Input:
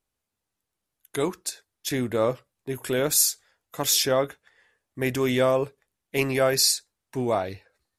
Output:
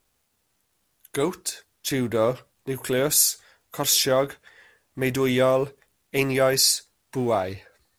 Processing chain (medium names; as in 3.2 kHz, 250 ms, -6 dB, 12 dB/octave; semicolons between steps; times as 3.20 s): companding laws mixed up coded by mu; trim +1 dB